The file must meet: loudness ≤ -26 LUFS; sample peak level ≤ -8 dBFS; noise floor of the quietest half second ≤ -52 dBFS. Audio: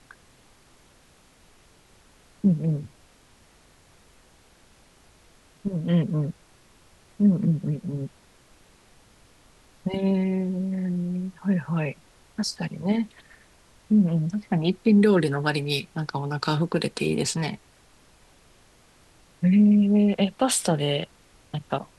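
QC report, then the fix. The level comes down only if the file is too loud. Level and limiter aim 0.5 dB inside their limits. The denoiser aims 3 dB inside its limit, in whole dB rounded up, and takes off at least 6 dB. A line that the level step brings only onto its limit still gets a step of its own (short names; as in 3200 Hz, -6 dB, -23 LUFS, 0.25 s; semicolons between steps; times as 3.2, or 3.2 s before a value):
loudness -24.5 LUFS: fail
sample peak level -9.0 dBFS: OK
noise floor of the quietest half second -57 dBFS: OK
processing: gain -2 dB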